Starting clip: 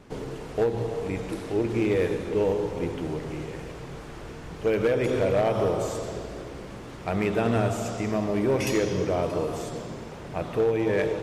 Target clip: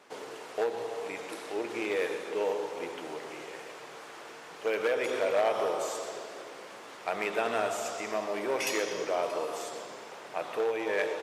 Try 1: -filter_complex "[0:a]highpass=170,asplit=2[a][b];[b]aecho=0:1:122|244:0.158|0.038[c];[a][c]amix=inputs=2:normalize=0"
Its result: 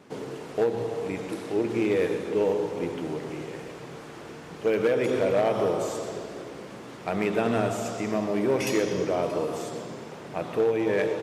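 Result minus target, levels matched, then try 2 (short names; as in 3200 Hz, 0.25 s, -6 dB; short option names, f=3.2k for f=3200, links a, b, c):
125 Hz band +15.0 dB
-filter_complex "[0:a]highpass=610,asplit=2[a][b];[b]aecho=0:1:122|244:0.158|0.038[c];[a][c]amix=inputs=2:normalize=0"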